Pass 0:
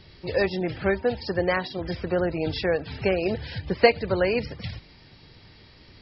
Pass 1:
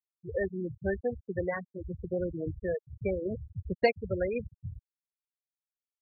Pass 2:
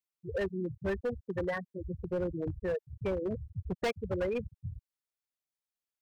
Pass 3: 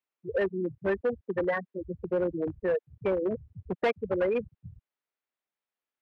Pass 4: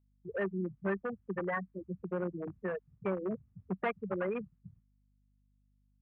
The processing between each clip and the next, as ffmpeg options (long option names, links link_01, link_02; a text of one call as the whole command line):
ffmpeg -i in.wav -af "lowshelf=frequency=87:gain=8,afftfilt=real='re*gte(hypot(re,im),0.2)':imag='im*gte(hypot(re,im),0.2)':win_size=1024:overlap=0.75,volume=-7.5dB" out.wav
ffmpeg -i in.wav -af "asoftclip=type=hard:threshold=-27.5dB" out.wav
ffmpeg -i in.wav -filter_complex "[0:a]acrossover=split=200 3100:gain=0.178 1 0.112[link_01][link_02][link_03];[link_01][link_02][link_03]amix=inputs=3:normalize=0,volume=6dB" out.wav
ffmpeg -i in.wav -af "agate=range=-33dB:threshold=-49dB:ratio=3:detection=peak,highpass=140,equalizer=frequency=190:width_type=q:width=4:gain=8,equalizer=frequency=300:width_type=q:width=4:gain=-6,equalizer=frequency=500:width_type=q:width=4:gain=-7,equalizer=frequency=1200:width_type=q:width=4:gain=6,lowpass=frequency=2600:width=0.5412,lowpass=frequency=2600:width=1.3066,aeval=exprs='val(0)+0.000501*(sin(2*PI*50*n/s)+sin(2*PI*2*50*n/s)/2+sin(2*PI*3*50*n/s)/3+sin(2*PI*4*50*n/s)/4+sin(2*PI*5*50*n/s)/5)':channel_layout=same,volume=-4.5dB" out.wav